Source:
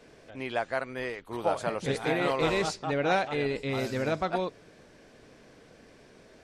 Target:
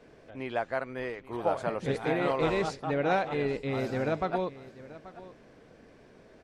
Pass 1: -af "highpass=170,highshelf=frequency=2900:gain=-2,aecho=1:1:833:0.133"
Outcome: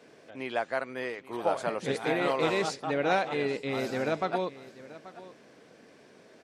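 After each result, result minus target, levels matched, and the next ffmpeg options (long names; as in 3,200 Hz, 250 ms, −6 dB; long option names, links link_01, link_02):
8,000 Hz band +6.5 dB; 125 Hz band −5.0 dB
-af "highpass=170,highshelf=frequency=2900:gain=-10,aecho=1:1:833:0.133"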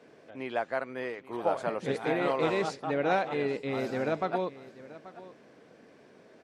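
125 Hz band −4.5 dB
-af "highshelf=frequency=2900:gain=-10,aecho=1:1:833:0.133"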